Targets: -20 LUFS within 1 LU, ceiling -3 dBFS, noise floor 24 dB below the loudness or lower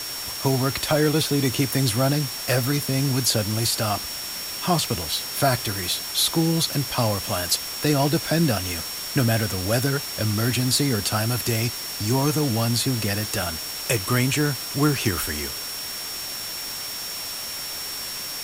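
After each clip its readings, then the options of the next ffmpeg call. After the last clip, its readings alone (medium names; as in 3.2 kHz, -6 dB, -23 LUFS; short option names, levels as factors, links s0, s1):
steady tone 5.5 kHz; tone level -33 dBFS; noise floor -32 dBFS; noise floor target -47 dBFS; loudness -23.0 LUFS; peak level -7.0 dBFS; loudness target -20.0 LUFS
-> -af "bandreject=f=5500:w=30"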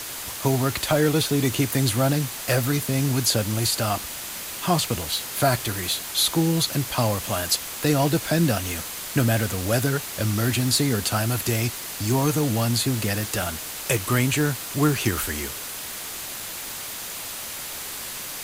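steady tone not found; noise floor -34 dBFS; noise floor target -48 dBFS
-> -af "afftdn=nr=14:nf=-34"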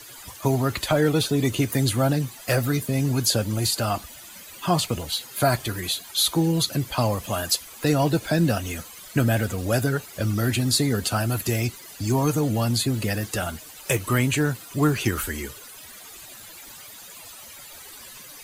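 noise floor -43 dBFS; noise floor target -48 dBFS
-> -af "afftdn=nr=6:nf=-43"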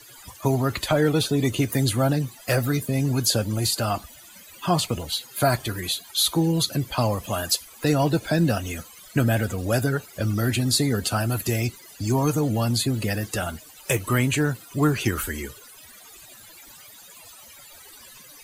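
noise floor -47 dBFS; noise floor target -48 dBFS
-> -af "afftdn=nr=6:nf=-47"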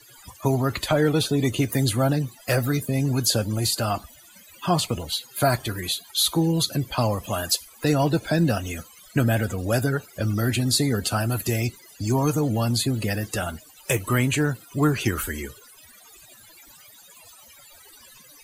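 noise floor -50 dBFS; loudness -24.0 LUFS; peak level -8.0 dBFS; loudness target -20.0 LUFS
-> -af "volume=1.58"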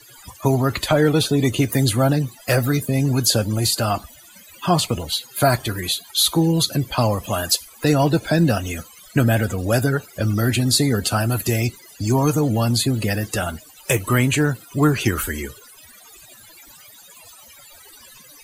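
loudness -20.0 LUFS; peak level -4.0 dBFS; noise floor -46 dBFS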